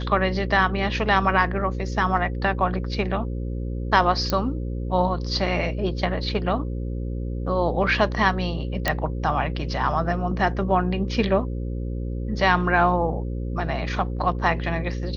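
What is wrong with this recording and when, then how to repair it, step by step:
mains buzz 60 Hz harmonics 9 −28 dBFS
0:04.30: click −9 dBFS
0:08.88: click −6 dBFS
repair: click removal
hum removal 60 Hz, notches 9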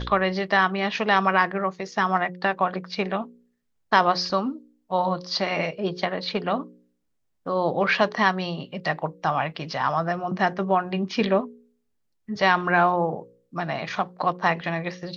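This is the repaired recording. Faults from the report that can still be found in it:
none of them is left

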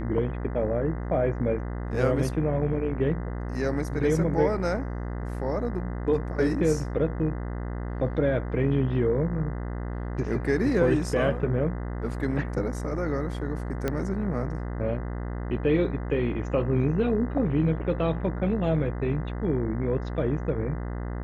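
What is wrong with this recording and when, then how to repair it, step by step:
mains buzz 60 Hz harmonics 34 −32 dBFS
0:13.88: click −14 dBFS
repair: click removal
hum removal 60 Hz, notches 34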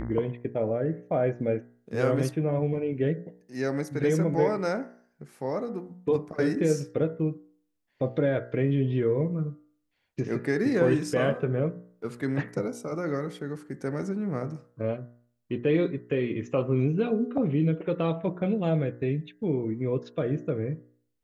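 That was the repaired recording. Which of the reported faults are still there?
none of them is left

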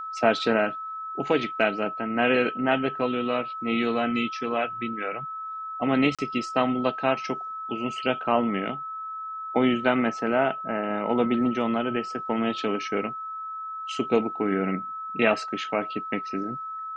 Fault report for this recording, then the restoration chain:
whistle 1,300 Hz −32 dBFS
0:06.15–0:06.19: drop-out 36 ms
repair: notch filter 1,300 Hz, Q 30
repair the gap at 0:06.15, 36 ms

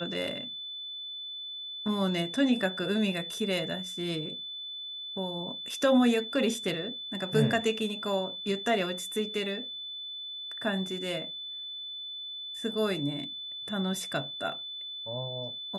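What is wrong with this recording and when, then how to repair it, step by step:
whistle 3,500 Hz −37 dBFS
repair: notch filter 3,500 Hz, Q 30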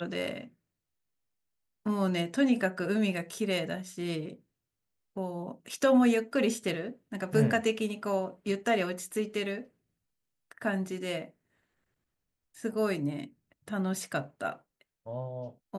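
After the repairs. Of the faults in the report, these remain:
none of them is left

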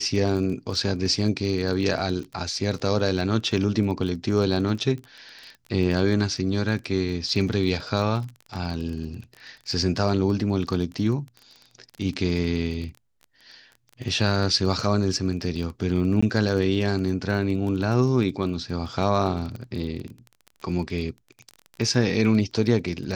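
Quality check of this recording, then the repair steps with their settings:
surface crackle 23 per second −31 dBFS
0:16.21–0:16.23: drop-out 15 ms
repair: click removal
repair the gap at 0:16.21, 15 ms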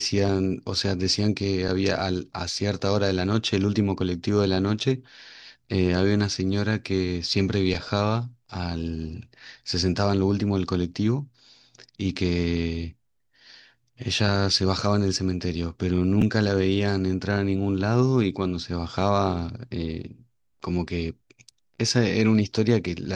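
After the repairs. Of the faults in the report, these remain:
none of them is left

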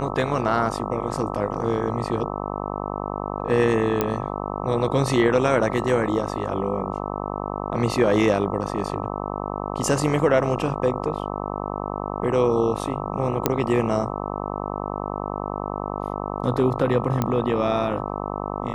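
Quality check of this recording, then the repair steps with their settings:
mains buzz 50 Hz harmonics 26 −29 dBFS
0:04.01: click −7 dBFS
0:13.46: click −3 dBFS
0:17.22: click −9 dBFS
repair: click removal
hum removal 50 Hz, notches 26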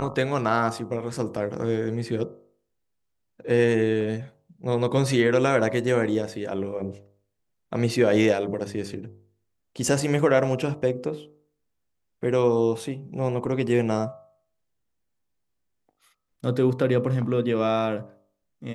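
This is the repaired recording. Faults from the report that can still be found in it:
none of them is left

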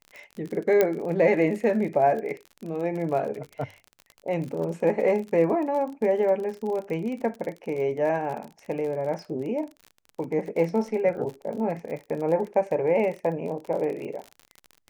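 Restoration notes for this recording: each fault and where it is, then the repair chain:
surface crackle 42 per second −33 dBFS
0:00.81: click −8 dBFS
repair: click removal

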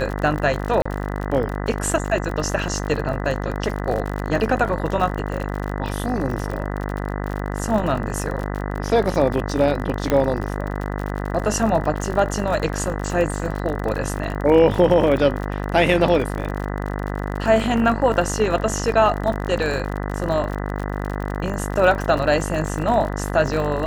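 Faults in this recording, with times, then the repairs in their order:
mains buzz 50 Hz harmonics 40 −26 dBFS
surface crackle 52 per second −26 dBFS
0:00.82–0:00.85: drop-out 35 ms
0:10.10: click −7 dBFS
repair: click removal
hum removal 50 Hz, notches 40
repair the gap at 0:00.82, 35 ms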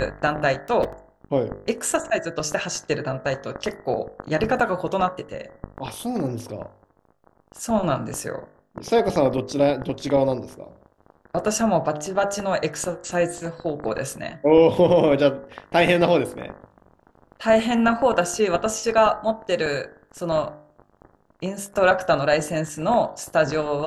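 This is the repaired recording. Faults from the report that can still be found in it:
none of them is left

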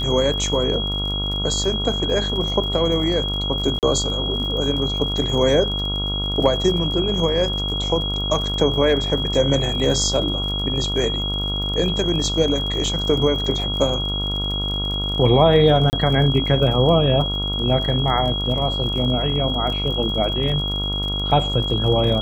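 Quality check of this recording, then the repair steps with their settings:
mains buzz 50 Hz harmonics 28 −26 dBFS
surface crackle 40 per second −28 dBFS
whistle 3,300 Hz −24 dBFS
0:03.79–0:03.83: drop-out 38 ms
0:15.90–0:15.93: drop-out 29 ms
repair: click removal
hum removal 50 Hz, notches 28
notch filter 3,300 Hz, Q 30
repair the gap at 0:03.79, 38 ms
repair the gap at 0:15.90, 29 ms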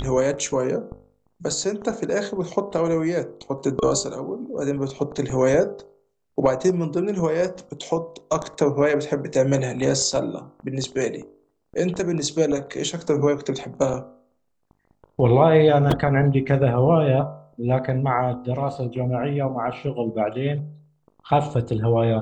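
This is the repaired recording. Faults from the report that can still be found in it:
none of them is left

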